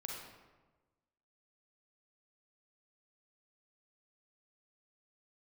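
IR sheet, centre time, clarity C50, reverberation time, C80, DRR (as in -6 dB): 69 ms, 0.0 dB, 1.2 s, 3.0 dB, -1.5 dB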